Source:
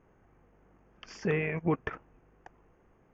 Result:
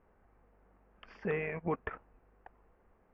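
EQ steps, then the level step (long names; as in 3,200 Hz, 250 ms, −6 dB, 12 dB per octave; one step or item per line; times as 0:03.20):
high-frequency loss of the air 430 metres
parametric band 130 Hz −14 dB 0.63 octaves
parametric band 320 Hz −7 dB 0.66 octaves
0.0 dB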